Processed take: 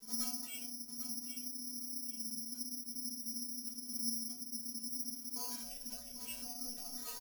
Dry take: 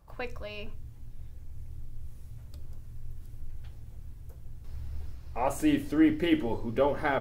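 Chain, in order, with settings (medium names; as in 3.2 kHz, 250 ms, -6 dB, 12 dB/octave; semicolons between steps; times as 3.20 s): band-stop 1.1 kHz, Q 5.3; comb 7.2 ms, depth 73%; peak limiter -26.5 dBFS, peak gain reduction 15.5 dB; compression 16:1, threshold -46 dBFS, peak gain reduction 17.5 dB; ring modulator 260 Hz; inharmonic resonator 230 Hz, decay 0.46 s, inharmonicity 0.008; vibrato 0.79 Hz 22 cents; careless resampling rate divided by 8×, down none, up zero stuff; on a send: feedback delay 796 ms, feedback 28%, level -10 dB; on the sum: random flutter of the level, depth 55%; trim +18 dB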